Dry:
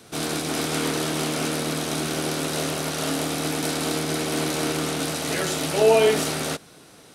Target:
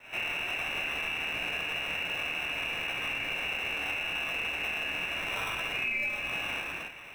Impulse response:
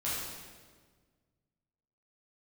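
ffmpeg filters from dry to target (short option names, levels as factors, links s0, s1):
-filter_complex "[0:a]lowshelf=f=450:g=-7.5,lowpass=f=2600:t=q:w=0.5098,lowpass=f=2600:t=q:w=0.6013,lowpass=f=2600:t=q:w=0.9,lowpass=f=2600:t=q:w=2.563,afreqshift=-3000[s0];[1:a]atrim=start_sample=2205,afade=t=out:st=0.39:d=0.01,atrim=end_sample=17640[s1];[s0][s1]afir=irnorm=-1:irlink=0,acrossover=split=1400[s2][s3];[s2]acrusher=samples=19:mix=1:aa=0.000001[s4];[s4][s3]amix=inputs=2:normalize=0,acompressor=threshold=0.0178:ratio=6,volume=1.5"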